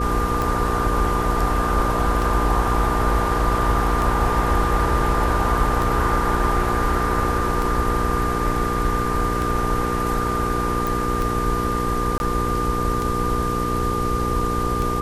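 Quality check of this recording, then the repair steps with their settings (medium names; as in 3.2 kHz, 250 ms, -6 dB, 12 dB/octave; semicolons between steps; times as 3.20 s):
hum 60 Hz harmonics 8 -26 dBFS
tick 33 1/3 rpm
whine 1.2 kHz -24 dBFS
10.87 s: pop
12.18–12.20 s: dropout 21 ms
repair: de-click; de-hum 60 Hz, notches 8; band-stop 1.2 kHz, Q 30; interpolate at 12.18 s, 21 ms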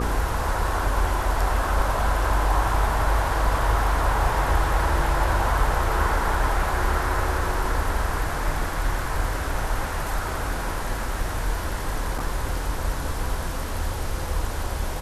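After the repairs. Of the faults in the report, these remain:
nothing left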